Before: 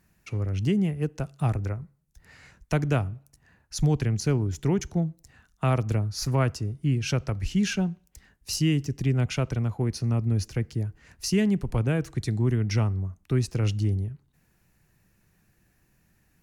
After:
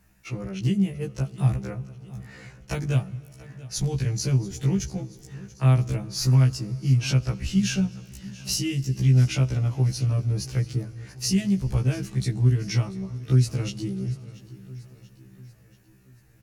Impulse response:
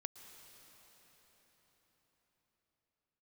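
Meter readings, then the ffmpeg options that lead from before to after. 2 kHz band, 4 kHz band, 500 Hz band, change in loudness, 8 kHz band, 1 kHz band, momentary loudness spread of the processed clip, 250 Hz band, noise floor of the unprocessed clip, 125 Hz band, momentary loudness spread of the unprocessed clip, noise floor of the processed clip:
-1.0 dB, +3.0 dB, -4.0 dB, +2.5 dB, +4.0 dB, -4.5 dB, 19 LU, +0.5 dB, -67 dBFS, +3.5 dB, 8 LU, -55 dBFS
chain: -filter_complex "[0:a]acrossover=split=180|3000[a][b][c];[b]acompressor=threshold=-37dB:ratio=4[d];[a][d][c]amix=inputs=3:normalize=0,aecho=1:1:685|1370|2055|2740:0.112|0.0595|0.0315|0.0167,asplit=2[e][f];[1:a]atrim=start_sample=2205[g];[f][g]afir=irnorm=-1:irlink=0,volume=-6.5dB[h];[e][h]amix=inputs=2:normalize=0,afftfilt=real='re*1.73*eq(mod(b,3),0)':imag='im*1.73*eq(mod(b,3),0)':win_size=2048:overlap=0.75,volume=4dB"

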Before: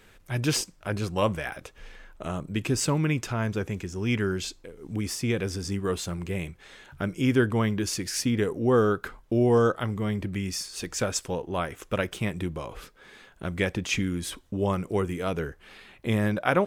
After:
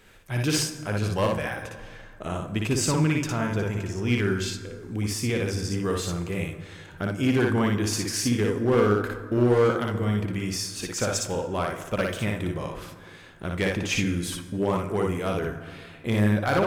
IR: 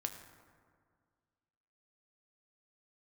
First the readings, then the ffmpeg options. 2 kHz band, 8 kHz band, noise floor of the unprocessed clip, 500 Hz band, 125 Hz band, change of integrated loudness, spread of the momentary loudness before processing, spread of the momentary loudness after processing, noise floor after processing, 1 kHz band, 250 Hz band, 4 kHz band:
+2.0 dB, +2.5 dB, -56 dBFS, +1.5 dB, +2.5 dB, +2.0 dB, 13 LU, 13 LU, -46 dBFS, +1.5 dB, +2.0 dB, +2.0 dB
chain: -filter_complex "[0:a]volume=18dB,asoftclip=hard,volume=-18dB,asplit=2[a][b];[1:a]atrim=start_sample=2205,lowshelf=f=67:g=-11.5,adelay=58[c];[b][c]afir=irnorm=-1:irlink=0,volume=-0.5dB[d];[a][d]amix=inputs=2:normalize=0"

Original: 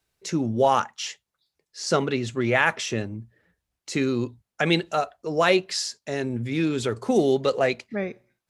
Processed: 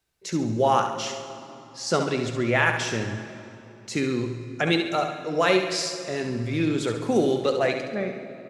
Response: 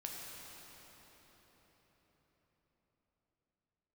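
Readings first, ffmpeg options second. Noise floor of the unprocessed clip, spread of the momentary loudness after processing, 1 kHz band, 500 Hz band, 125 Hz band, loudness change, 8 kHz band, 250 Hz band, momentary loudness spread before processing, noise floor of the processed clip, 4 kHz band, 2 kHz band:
-85 dBFS, 14 LU, 0.0 dB, -0.5 dB, +0.5 dB, -0.5 dB, -0.5 dB, 0.0 dB, 11 LU, -47 dBFS, 0.0 dB, 0.0 dB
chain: -filter_complex "[0:a]aecho=1:1:69|138|207|276|345:0.398|0.187|0.0879|0.0413|0.0194,asplit=2[a][b];[1:a]atrim=start_sample=2205,asetrate=83790,aresample=44100[c];[b][c]afir=irnorm=-1:irlink=0,volume=1.5dB[d];[a][d]amix=inputs=2:normalize=0,volume=-4dB"

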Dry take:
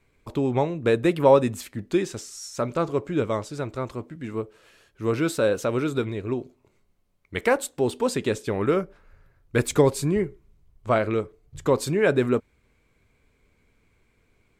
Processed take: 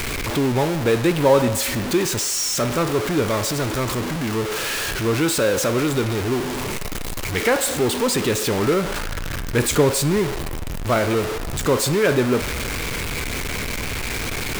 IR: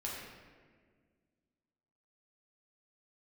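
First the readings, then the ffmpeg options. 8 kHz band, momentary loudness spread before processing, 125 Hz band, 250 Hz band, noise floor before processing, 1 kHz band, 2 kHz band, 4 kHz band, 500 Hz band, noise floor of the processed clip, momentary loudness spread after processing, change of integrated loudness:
+13.5 dB, 13 LU, +6.0 dB, +4.5 dB, -66 dBFS, +4.5 dB, +8.0 dB, +13.5 dB, +2.5 dB, -26 dBFS, 8 LU, +4.0 dB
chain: -filter_complex "[0:a]aeval=exprs='val(0)+0.5*0.0944*sgn(val(0))':c=same,asplit=2[a][b];[b]highpass=f=600:w=0.5412,highpass=f=600:w=1.3066[c];[1:a]atrim=start_sample=2205[d];[c][d]afir=irnorm=-1:irlink=0,volume=-7.5dB[e];[a][e]amix=inputs=2:normalize=0"

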